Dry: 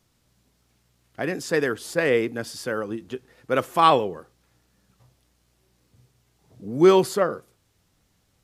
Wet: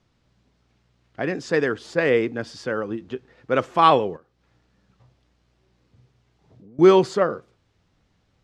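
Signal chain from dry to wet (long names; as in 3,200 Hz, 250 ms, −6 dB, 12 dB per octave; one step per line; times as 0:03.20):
high-frequency loss of the air 140 metres
0:04.16–0:06.79: downward compressor 5 to 1, threshold −51 dBFS, peak gain reduction 21.5 dB
dynamic equaliser 7,000 Hz, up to +5 dB, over −48 dBFS, Q 1.3
level +2 dB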